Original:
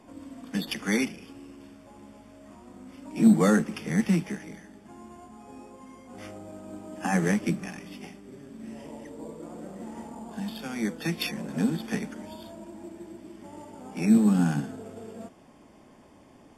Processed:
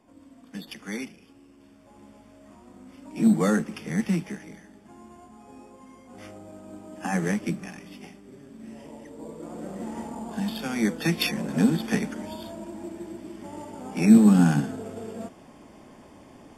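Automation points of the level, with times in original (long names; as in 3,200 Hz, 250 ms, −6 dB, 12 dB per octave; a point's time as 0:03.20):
0:01.50 −8 dB
0:02.02 −1.5 dB
0:09.08 −1.5 dB
0:09.73 +5 dB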